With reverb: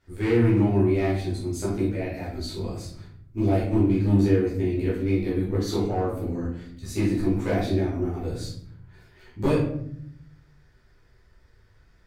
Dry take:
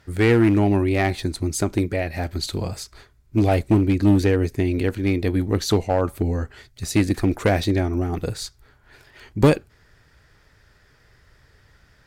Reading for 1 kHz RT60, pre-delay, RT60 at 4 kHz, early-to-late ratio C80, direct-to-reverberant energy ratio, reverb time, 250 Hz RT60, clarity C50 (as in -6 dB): 0.60 s, 10 ms, 0.40 s, 7.0 dB, -9.5 dB, 0.65 s, 1.2 s, 3.0 dB